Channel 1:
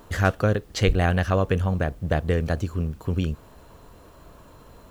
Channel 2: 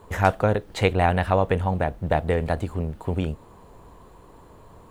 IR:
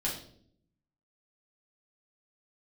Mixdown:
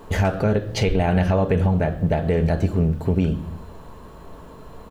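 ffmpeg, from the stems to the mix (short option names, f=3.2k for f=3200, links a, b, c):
-filter_complex "[0:a]volume=-1dB,asplit=2[a][b];[b]volume=-4.5dB[c];[1:a]aecho=1:1:4.6:0.62,adelay=0.5,volume=2dB[d];[2:a]atrim=start_sample=2205[e];[c][e]afir=irnorm=-1:irlink=0[f];[a][d][f]amix=inputs=3:normalize=0,highshelf=f=4k:g=-5.5,alimiter=limit=-10.5dB:level=0:latency=1:release=164"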